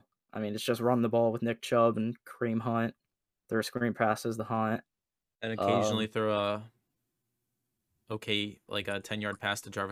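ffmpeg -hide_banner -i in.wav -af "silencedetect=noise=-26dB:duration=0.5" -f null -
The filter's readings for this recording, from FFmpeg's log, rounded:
silence_start: 2.87
silence_end: 3.52 | silence_duration: 0.65
silence_start: 4.75
silence_end: 5.44 | silence_duration: 0.68
silence_start: 6.55
silence_end: 8.11 | silence_duration: 1.56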